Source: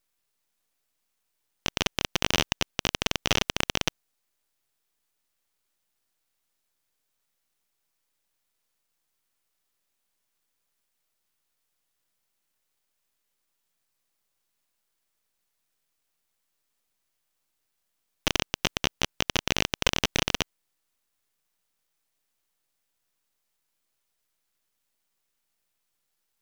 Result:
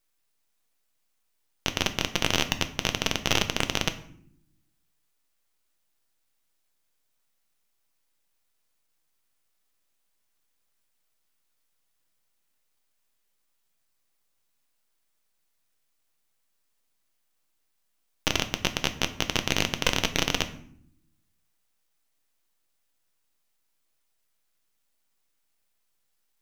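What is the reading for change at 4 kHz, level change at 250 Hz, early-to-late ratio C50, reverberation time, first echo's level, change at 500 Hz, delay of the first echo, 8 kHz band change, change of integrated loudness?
+0.5 dB, +1.5 dB, 13.5 dB, 0.65 s, none, +0.5 dB, none, +0.5 dB, +0.5 dB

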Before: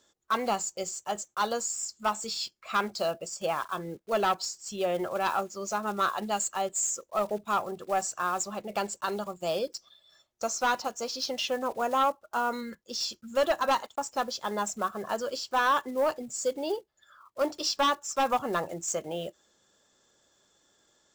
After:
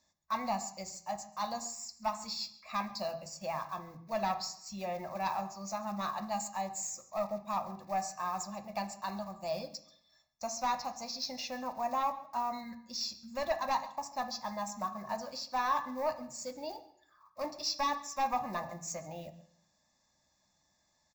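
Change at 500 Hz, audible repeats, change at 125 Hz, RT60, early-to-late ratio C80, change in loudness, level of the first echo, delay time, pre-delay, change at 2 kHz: -9.0 dB, 1, -2.5 dB, 0.70 s, 15.0 dB, -6.5 dB, -20.0 dB, 0.137 s, 3 ms, -10.0 dB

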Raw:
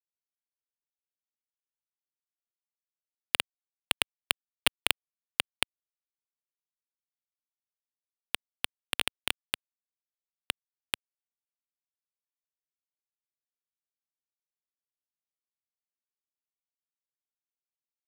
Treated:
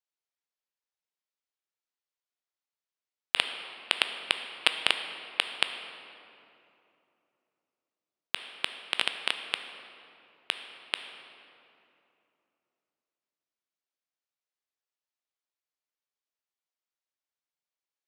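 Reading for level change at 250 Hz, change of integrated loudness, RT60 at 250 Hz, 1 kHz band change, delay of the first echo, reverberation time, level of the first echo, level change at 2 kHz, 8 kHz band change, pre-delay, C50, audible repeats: -3.0 dB, +2.0 dB, 3.4 s, +3.0 dB, none, 2.9 s, none, +3.0 dB, -6.0 dB, 11 ms, 8.0 dB, none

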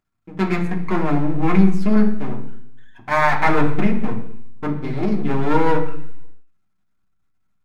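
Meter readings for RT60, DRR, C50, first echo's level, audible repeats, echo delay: 0.70 s, 0.5 dB, 9.5 dB, none, none, none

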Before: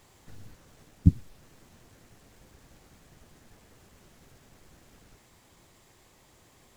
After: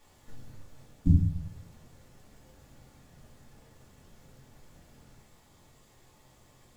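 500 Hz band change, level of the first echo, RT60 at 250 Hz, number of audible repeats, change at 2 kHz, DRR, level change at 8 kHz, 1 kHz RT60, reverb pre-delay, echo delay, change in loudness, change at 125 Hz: -0.5 dB, none, 0.70 s, none, -2.5 dB, -4.0 dB, -2.5 dB, 0.45 s, 3 ms, none, -1.5 dB, +1.0 dB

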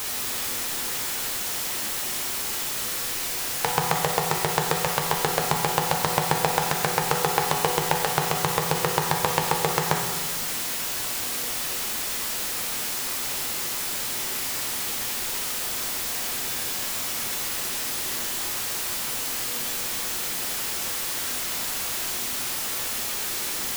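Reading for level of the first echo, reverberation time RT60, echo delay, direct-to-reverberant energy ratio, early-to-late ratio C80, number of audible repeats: none, 1.5 s, none, 0.0 dB, 5.0 dB, none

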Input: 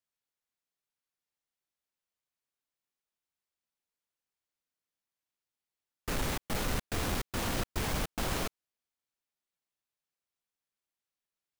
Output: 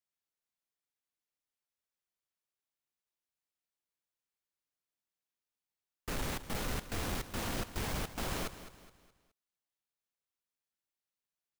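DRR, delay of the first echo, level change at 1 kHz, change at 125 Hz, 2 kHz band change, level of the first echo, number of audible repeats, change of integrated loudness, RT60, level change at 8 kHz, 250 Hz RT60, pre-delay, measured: none, 0.21 s, -4.0 dB, -4.0 dB, -3.5 dB, -13.5 dB, 3, -4.0 dB, none, -4.0 dB, none, none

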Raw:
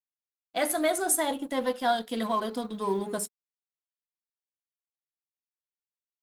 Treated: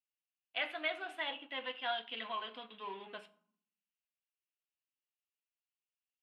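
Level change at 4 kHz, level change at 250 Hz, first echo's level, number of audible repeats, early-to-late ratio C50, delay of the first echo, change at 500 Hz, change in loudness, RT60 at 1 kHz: -3.0 dB, -22.0 dB, none, none, 18.0 dB, none, -16.0 dB, -11.0 dB, 0.65 s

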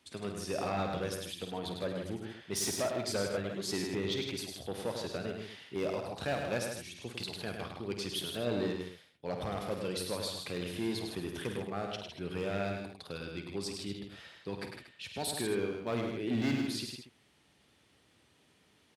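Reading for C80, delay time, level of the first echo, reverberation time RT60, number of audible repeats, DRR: none, 50 ms, -10.0 dB, none, 4, none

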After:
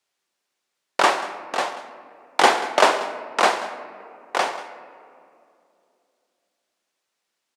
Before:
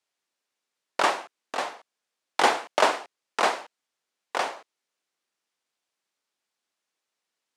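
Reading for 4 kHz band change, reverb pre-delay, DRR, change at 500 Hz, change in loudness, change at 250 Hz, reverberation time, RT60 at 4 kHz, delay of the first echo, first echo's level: +5.5 dB, 3 ms, 10.0 dB, +5.5 dB, +5.5 dB, +5.5 dB, 2.6 s, 1.3 s, 0.186 s, -17.0 dB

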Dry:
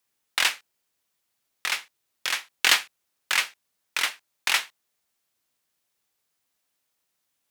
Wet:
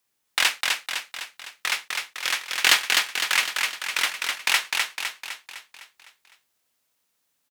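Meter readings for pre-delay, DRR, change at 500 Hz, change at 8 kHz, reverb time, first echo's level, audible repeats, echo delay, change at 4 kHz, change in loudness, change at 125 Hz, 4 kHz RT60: none, none, +3.5 dB, +3.5 dB, none, -3.5 dB, 6, 0.254 s, +3.5 dB, +2.0 dB, n/a, none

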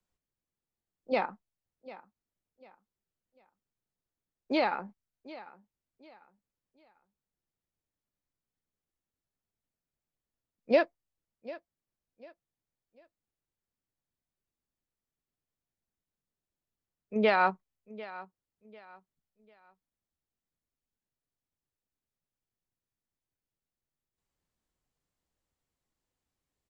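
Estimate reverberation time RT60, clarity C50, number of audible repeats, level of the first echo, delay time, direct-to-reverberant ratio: none, none, 2, -18.0 dB, 0.746 s, none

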